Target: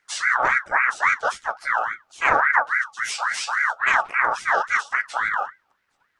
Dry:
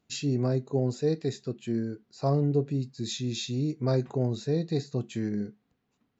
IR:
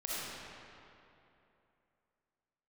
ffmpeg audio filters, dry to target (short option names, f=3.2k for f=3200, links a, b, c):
-filter_complex "[0:a]asplit=3[a][b][c];[b]asetrate=52444,aresample=44100,atempo=0.840896,volume=-4dB[d];[c]asetrate=58866,aresample=44100,atempo=0.749154,volume=-13dB[e];[a][d][e]amix=inputs=3:normalize=0,aeval=exprs='val(0)*sin(2*PI*1400*n/s+1400*0.3/3.6*sin(2*PI*3.6*n/s))':c=same,volume=7.5dB"